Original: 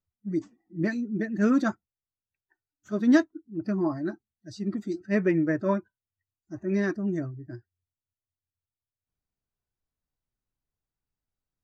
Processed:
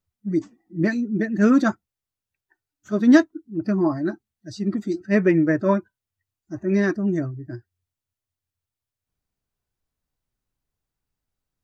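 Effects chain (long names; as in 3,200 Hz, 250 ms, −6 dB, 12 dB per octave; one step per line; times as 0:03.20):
level +6 dB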